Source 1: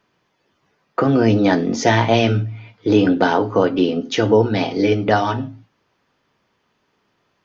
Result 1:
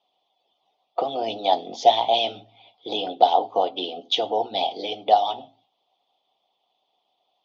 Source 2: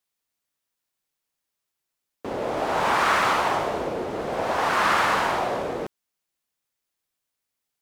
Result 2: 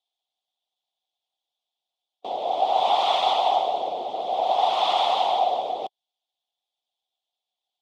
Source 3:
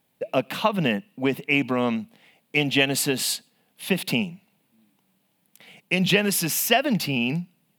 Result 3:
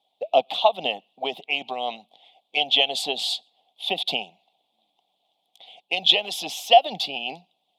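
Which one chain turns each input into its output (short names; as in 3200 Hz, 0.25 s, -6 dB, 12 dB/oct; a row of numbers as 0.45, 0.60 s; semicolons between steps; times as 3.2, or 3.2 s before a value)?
harmonic-percussive split harmonic -10 dB; double band-pass 1600 Hz, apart 2.2 oct; match loudness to -23 LUFS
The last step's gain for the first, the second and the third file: +9.0, +14.0, +14.0 dB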